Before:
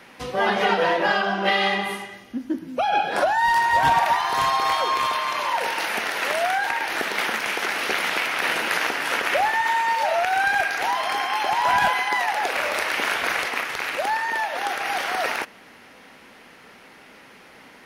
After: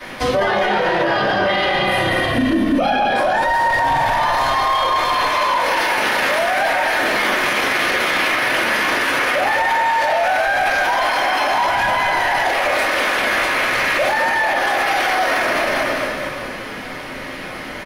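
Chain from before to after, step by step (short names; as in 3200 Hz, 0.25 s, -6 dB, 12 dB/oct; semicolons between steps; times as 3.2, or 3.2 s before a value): frequency-shifting echo 0.204 s, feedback 61%, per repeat -30 Hz, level -6 dB; shoebox room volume 40 m³, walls mixed, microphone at 2.6 m; maximiser +11 dB; gain -8.5 dB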